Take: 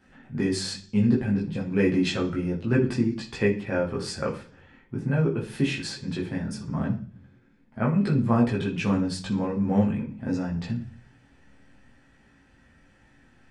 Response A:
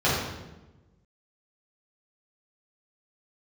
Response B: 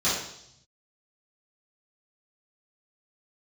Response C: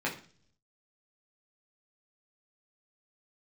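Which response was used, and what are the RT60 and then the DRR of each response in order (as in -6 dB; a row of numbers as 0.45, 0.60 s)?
C; 1.1, 0.70, 0.45 s; -9.0, -11.5, -4.0 dB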